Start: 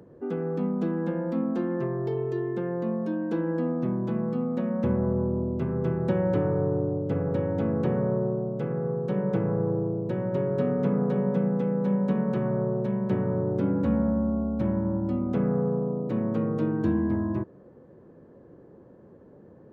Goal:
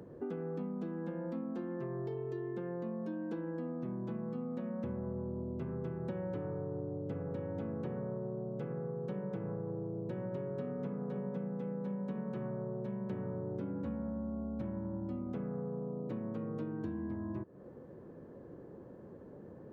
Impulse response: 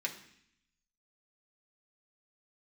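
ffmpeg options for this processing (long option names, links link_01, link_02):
-af "acompressor=threshold=-37dB:ratio=6"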